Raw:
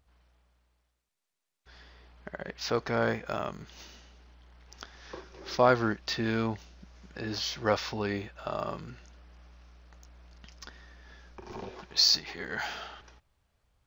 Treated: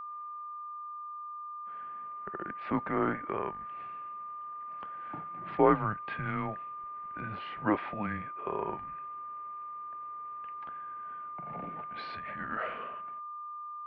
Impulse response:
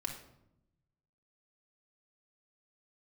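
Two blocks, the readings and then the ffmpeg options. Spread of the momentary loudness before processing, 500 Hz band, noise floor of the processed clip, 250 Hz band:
24 LU, -3.0 dB, -42 dBFS, 0.0 dB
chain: -af "highpass=f=200:t=q:w=0.5412,highpass=f=200:t=q:w=1.307,lowpass=f=2.6k:t=q:w=0.5176,lowpass=f=2.6k:t=q:w=0.7071,lowpass=f=2.6k:t=q:w=1.932,afreqshift=-210,highpass=f=150:p=1,aeval=exprs='val(0)+0.0112*sin(2*PI*1200*n/s)':c=same"

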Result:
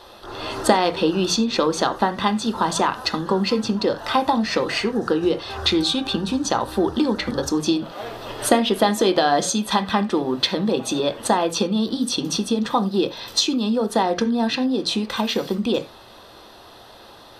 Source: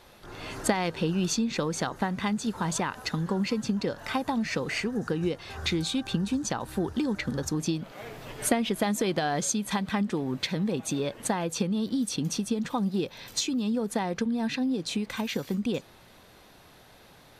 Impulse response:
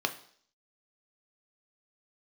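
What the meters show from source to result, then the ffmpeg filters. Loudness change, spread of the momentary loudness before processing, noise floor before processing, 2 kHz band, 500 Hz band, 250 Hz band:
+8.0 dB, 5 LU, -54 dBFS, +6.0 dB, +10.5 dB, +6.5 dB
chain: -filter_complex "[0:a]asplit=2[a][b];[1:a]atrim=start_sample=2205,afade=t=out:st=0.15:d=0.01,atrim=end_sample=7056,lowpass=8.5k[c];[b][c]afir=irnorm=-1:irlink=0,volume=-4dB[d];[a][d]amix=inputs=2:normalize=0,volume=4dB"

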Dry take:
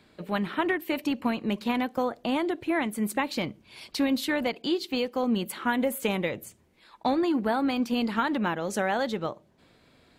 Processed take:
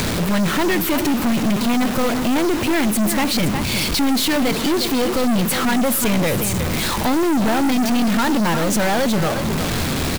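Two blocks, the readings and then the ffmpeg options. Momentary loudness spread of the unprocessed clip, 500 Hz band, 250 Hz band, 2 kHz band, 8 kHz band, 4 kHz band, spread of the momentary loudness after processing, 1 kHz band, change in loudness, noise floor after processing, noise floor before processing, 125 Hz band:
7 LU, +8.0 dB, +10.0 dB, +9.0 dB, +18.5 dB, +13.0 dB, 2 LU, +8.0 dB, +9.5 dB, -22 dBFS, -62 dBFS, +16.5 dB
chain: -filter_complex "[0:a]aeval=exprs='val(0)+0.5*0.0188*sgn(val(0))':c=same,asplit=2[a][b];[b]acompressor=mode=upward:threshold=-30dB:ratio=2.5,volume=1dB[c];[a][c]amix=inputs=2:normalize=0,bass=f=250:g=9,treble=f=4k:g=2,acrusher=bits=4:mix=0:aa=0.000001,asplit=2[d][e];[e]aecho=0:1:361:0.266[f];[d][f]amix=inputs=2:normalize=0,aeval=exprs='(tanh(14.1*val(0)+0.4)-tanh(0.4))/14.1':c=same,volume=7dB"

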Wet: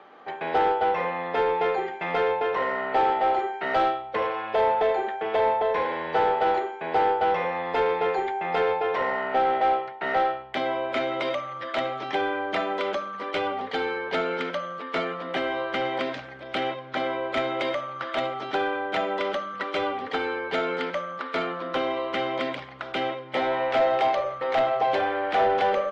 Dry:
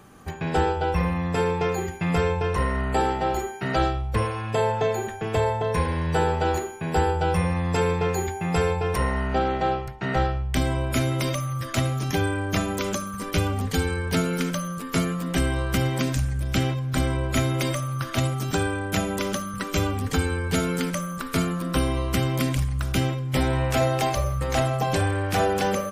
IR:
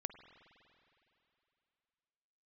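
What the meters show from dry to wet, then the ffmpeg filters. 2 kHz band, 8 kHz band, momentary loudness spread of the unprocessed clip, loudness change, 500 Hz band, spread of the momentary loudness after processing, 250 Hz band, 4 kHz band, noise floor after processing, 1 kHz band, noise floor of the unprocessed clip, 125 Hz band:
+1.0 dB, under -20 dB, 4 LU, -1.0 dB, +1.5 dB, 7 LU, -8.5 dB, -2.0 dB, -39 dBFS, +3.5 dB, -34 dBFS, -22.5 dB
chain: -filter_complex "[0:a]highpass=480,equalizer=f=1.1k:t=q:w=4:g=-7,equalizer=f=1.6k:t=q:w=4:g=-6,equalizer=f=2.6k:t=q:w=4:g=-7,lowpass=f=3.5k:w=0.5412,lowpass=f=3.5k:w=1.3066,asplit=2[a][b];[b]highpass=f=720:p=1,volume=14dB,asoftclip=type=tanh:threshold=-14.5dB[c];[a][c]amix=inputs=2:normalize=0,lowpass=f=1.7k:p=1,volume=-6dB,volume=2dB"

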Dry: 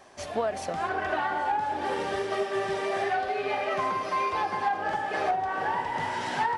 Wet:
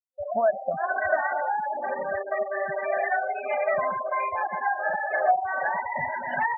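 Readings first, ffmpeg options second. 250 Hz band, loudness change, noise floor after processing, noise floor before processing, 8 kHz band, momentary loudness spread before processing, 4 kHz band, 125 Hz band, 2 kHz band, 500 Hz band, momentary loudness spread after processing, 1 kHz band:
-7.5 dB, +2.0 dB, -36 dBFS, -37 dBFS, under -35 dB, 3 LU, under -20 dB, -6.0 dB, +4.5 dB, +3.5 dB, 5 LU, +1.0 dB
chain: -af "afftfilt=real='re*gte(hypot(re,im),0.0562)':imag='im*gte(hypot(re,im),0.0562)':win_size=1024:overlap=0.75,superequalizer=6b=0.282:7b=0.316:8b=2.51:11b=2.24:13b=3.98"

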